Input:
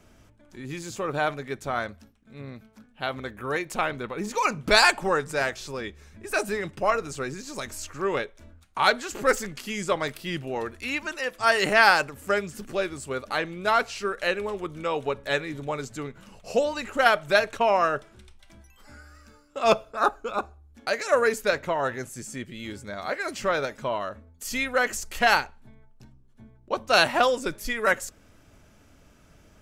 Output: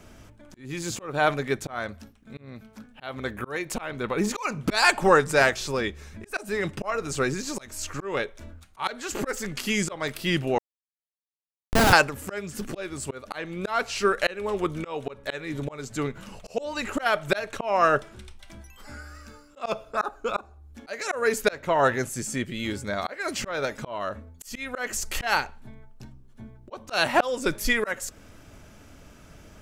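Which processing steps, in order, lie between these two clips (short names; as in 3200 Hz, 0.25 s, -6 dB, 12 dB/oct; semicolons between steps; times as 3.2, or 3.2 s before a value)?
auto swell 0.344 s; 10.58–11.93 Schmitt trigger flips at -15 dBFS; gain +6.5 dB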